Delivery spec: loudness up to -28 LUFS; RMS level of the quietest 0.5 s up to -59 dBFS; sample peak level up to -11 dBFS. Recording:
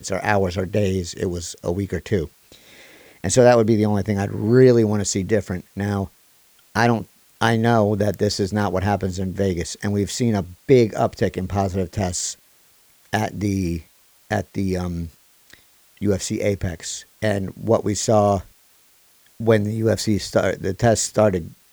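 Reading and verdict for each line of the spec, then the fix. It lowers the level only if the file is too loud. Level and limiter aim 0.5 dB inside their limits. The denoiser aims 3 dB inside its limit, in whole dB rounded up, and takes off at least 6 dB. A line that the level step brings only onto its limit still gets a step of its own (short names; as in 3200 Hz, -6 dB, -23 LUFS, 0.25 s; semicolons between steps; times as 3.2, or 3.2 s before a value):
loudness -21.0 LUFS: fail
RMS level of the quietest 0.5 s -56 dBFS: fail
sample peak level -2.5 dBFS: fail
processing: gain -7.5 dB; limiter -11.5 dBFS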